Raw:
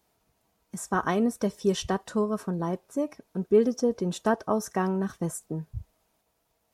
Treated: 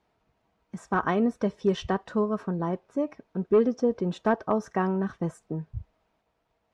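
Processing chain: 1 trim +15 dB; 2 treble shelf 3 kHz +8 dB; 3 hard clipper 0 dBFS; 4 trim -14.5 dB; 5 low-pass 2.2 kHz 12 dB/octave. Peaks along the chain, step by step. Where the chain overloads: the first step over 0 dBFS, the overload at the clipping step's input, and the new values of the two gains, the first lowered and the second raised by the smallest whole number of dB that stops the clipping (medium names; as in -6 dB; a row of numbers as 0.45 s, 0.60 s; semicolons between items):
+3.5 dBFS, +4.0 dBFS, 0.0 dBFS, -14.5 dBFS, -14.0 dBFS; step 1, 4.0 dB; step 1 +11 dB, step 4 -10.5 dB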